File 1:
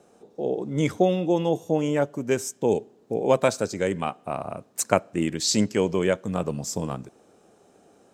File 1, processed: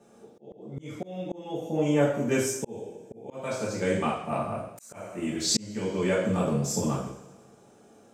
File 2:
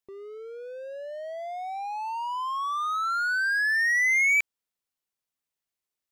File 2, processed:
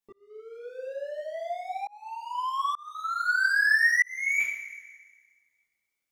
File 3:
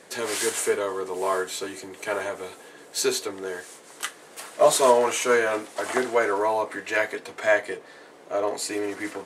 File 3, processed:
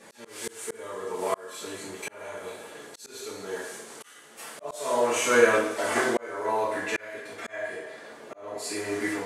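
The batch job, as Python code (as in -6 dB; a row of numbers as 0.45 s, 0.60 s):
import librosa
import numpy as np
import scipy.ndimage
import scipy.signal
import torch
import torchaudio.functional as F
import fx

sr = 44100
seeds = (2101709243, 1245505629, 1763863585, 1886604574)

y = fx.rev_double_slope(x, sr, seeds[0], early_s=0.6, late_s=1.7, knee_db=-17, drr_db=-7.0)
y = fx.auto_swell(y, sr, attack_ms=702.0)
y = y * 10.0 ** (-30 / 20.0) / np.sqrt(np.mean(np.square(y)))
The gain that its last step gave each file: -7.0 dB, -5.5 dB, -5.0 dB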